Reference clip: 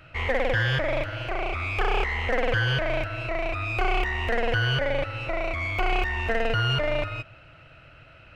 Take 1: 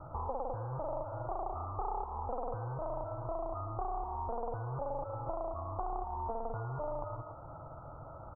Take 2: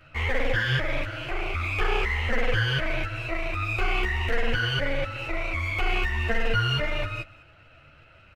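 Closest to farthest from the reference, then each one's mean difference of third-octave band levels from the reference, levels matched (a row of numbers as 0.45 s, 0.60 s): 2, 1; 3.0 dB, 13.0 dB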